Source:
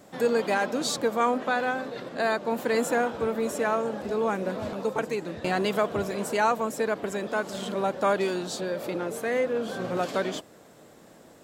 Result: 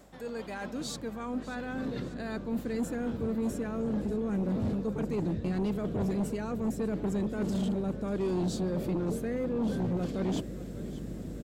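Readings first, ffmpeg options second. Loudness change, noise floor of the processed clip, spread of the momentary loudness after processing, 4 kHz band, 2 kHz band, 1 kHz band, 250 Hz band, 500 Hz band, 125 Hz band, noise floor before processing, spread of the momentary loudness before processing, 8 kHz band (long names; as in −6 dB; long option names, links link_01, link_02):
−5.0 dB, −41 dBFS, 7 LU, −10.5 dB, −14.0 dB, −15.0 dB, +2.0 dB, −8.5 dB, +6.0 dB, −53 dBFS, 6 LU, −9.5 dB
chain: -af "areverse,acompressor=threshold=-36dB:ratio=6,areverse,aeval=exprs='val(0)+0.000708*(sin(2*PI*50*n/s)+sin(2*PI*2*50*n/s)/2+sin(2*PI*3*50*n/s)/3+sin(2*PI*4*50*n/s)/4+sin(2*PI*5*50*n/s)/5)':channel_layout=same,asubboost=boost=11.5:cutoff=250,aecho=1:1:591|1182|1773|2364|2955:0.141|0.0777|0.0427|0.0235|0.0129,aeval=exprs='0.141*sin(PI/2*1.78*val(0)/0.141)':channel_layout=same,volume=-8.5dB"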